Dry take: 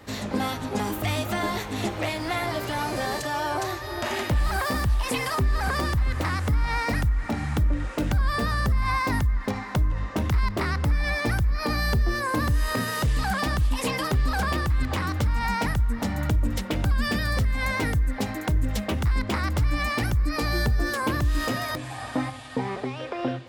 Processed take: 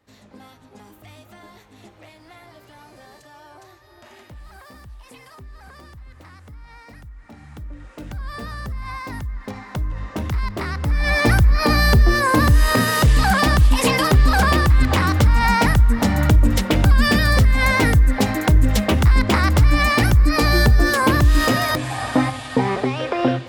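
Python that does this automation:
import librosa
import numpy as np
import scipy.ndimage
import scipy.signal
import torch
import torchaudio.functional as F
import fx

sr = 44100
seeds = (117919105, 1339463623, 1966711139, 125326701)

y = fx.gain(x, sr, db=fx.line((7.01, -18.0), (8.36, -6.5), (9.11, -6.5), (10.09, 0.0), (10.79, 0.0), (11.2, 9.5)))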